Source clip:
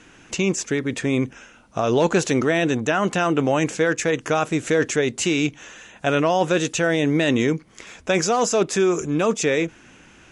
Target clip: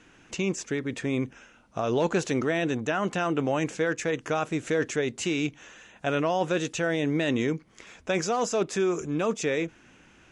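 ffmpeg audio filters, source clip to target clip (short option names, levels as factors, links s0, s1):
-af "highshelf=f=7200:g=-6,volume=0.473"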